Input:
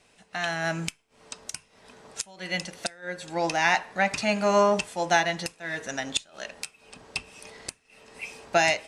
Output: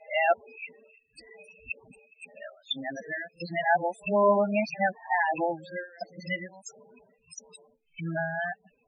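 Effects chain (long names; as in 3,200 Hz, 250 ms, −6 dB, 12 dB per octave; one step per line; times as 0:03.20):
played backwards from end to start
spectral peaks only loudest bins 8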